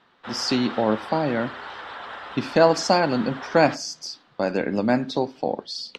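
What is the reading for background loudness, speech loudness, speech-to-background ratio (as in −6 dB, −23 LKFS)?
−36.5 LKFS, −23.5 LKFS, 13.0 dB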